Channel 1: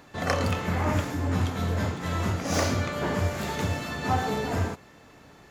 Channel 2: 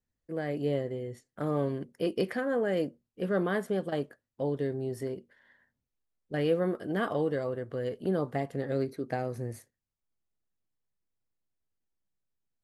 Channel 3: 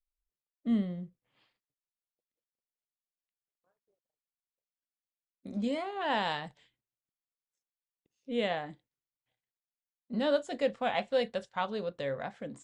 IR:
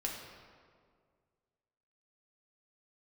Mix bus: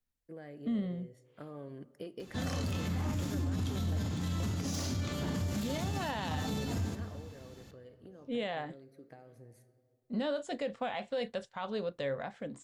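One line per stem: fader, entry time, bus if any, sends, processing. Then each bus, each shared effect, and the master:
−2.0 dB, 2.20 s, send −8.5 dB, flat-topped bell 950 Hz −10 dB 3 octaves
−7.0 dB, 0.00 s, send −17 dB, downward compressor 12 to 1, threshold −34 dBFS, peak gain reduction 13 dB; automatic ducking −11 dB, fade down 1.35 s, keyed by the third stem
0.0 dB, 0.00 s, no send, no processing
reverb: on, RT60 2.0 s, pre-delay 4 ms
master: brickwall limiter −26.5 dBFS, peak gain reduction 12 dB

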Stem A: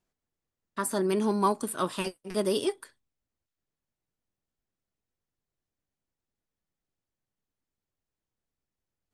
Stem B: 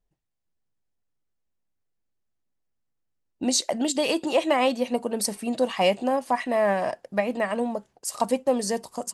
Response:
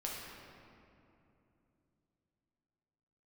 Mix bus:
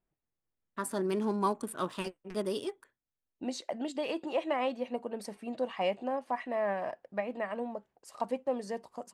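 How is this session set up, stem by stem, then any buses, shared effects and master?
−4.5 dB, 0.00 s, no send, adaptive Wiener filter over 9 samples; high-shelf EQ 10,000 Hz −5.5 dB; automatic ducking −11 dB, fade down 1.10 s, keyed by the second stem
−9.0 dB, 0.00 s, no send, bass and treble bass −4 dB, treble −15 dB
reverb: not used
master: no processing

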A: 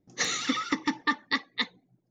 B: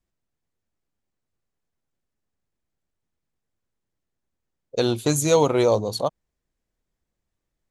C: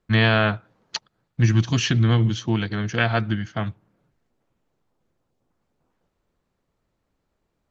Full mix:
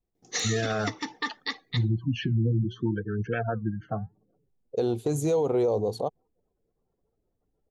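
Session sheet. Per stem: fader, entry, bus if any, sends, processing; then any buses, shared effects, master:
−7.5 dB, 0.15 s, no send, high-shelf EQ 2,300 Hz +11.5 dB
−7.5 dB, 0.00 s, no send, tilt shelving filter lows +5.5 dB, about 670 Hz
−1.0 dB, 0.35 s, no send, gate on every frequency bin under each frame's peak −15 dB strong; low-pass filter 2,500 Hz 12 dB per octave; flanger 0.7 Hz, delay 0.1 ms, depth 7.7 ms, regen +81%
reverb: not used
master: hollow resonant body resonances 440/750 Hz, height 10 dB, ringing for 25 ms; brickwall limiter −17.5 dBFS, peak gain reduction 11.5 dB

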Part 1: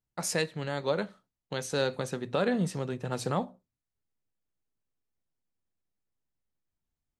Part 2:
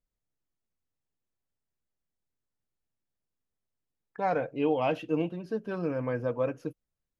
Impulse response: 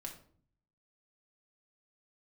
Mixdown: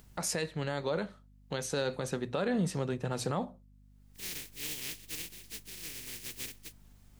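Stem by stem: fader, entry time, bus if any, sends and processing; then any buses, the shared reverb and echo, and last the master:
+0.5 dB, 0.00 s, no send, upward compression, threshold −41 dBFS
−11.5 dB, 0.00 s, no send, compressing power law on the bin magnitudes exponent 0.11; flat-topped bell 900 Hz −14 dB; mains hum 50 Hz, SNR 12 dB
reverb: not used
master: brickwall limiter −21.5 dBFS, peak gain reduction 7.5 dB

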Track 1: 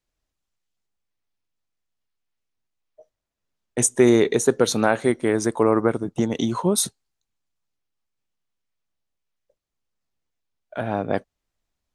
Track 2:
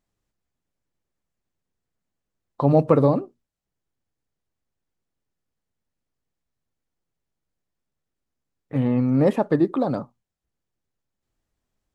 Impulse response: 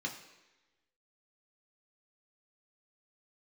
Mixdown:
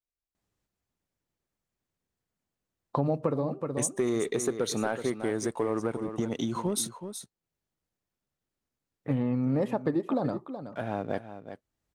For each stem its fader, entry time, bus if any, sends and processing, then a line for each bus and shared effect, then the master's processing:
−10.5 dB, 0.00 s, no send, echo send −12 dB, noise gate −38 dBFS, range −6 dB; leveller curve on the samples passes 1
−1.0 dB, 0.35 s, no send, echo send −15 dB, high-pass filter 41 Hz; automatic ducking −16 dB, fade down 0.45 s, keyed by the first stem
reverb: not used
echo: single-tap delay 373 ms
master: downward compressor 6 to 1, threshold −24 dBFS, peak gain reduction 12 dB

